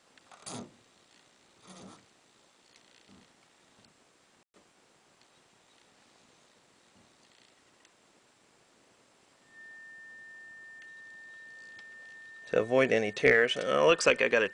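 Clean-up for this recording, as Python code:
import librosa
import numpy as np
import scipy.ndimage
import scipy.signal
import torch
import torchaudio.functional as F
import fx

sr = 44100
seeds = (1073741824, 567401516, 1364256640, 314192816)

y = fx.notch(x, sr, hz=1800.0, q=30.0)
y = fx.fix_ambience(y, sr, seeds[0], print_start_s=8.19, print_end_s=8.69, start_s=4.43, end_s=4.54)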